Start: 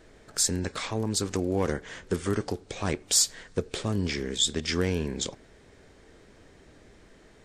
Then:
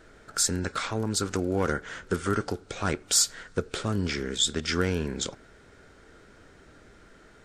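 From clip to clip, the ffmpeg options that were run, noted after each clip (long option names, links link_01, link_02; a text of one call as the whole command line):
ffmpeg -i in.wav -af "equalizer=frequency=1400:width_type=o:width=0.24:gain=13.5" out.wav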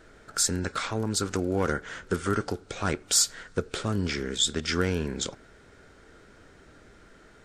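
ffmpeg -i in.wav -af anull out.wav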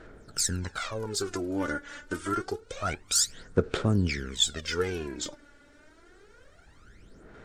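ffmpeg -i in.wav -af "aphaser=in_gain=1:out_gain=1:delay=3.5:decay=0.73:speed=0.27:type=sinusoidal,volume=-6dB" out.wav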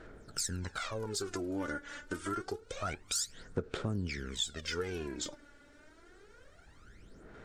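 ffmpeg -i in.wav -af "acompressor=threshold=-32dB:ratio=2.5,volume=-2.5dB" out.wav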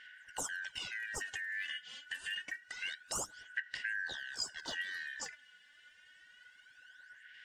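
ffmpeg -i in.wav -af "afftfilt=real='real(if(lt(b,272),68*(eq(floor(b/68),0)*3+eq(floor(b/68),1)*0+eq(floor(b/68),2)*1+eq(floor(b/68),3)*2)+mod(b,68),b),0)':imag='imag(if(lt(b,272),68*(eq(floor(b/68),0)*3+eq(floor(b/68),1)*0+eq(floor(b/68),2)*1+eq(floor(b/68),3)*2)+mod(b,68),b),0)':win_size=2048:overlap=0.75,volume=-4dB" out.wav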